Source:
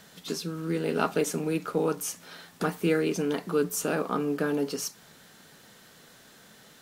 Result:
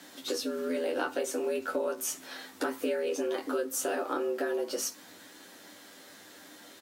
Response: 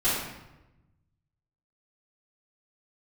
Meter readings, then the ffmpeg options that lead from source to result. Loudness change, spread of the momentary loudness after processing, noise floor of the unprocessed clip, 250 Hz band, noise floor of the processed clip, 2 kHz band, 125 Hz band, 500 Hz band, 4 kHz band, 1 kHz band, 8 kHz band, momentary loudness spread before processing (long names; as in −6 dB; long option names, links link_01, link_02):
−3.5 dB, 19 LU, −55 dBFS, −7.0 dB, −53 dBFS, −2.5 dB, below −25 dB, −2.0 dB, −1.0 dB, −3.5 dB, −0.5 dB, 8 LU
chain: -af "aecho=1:1:10|23:0.668|0.473,afreqshift=90,acompressor=threshold=-28dB:ratio=6"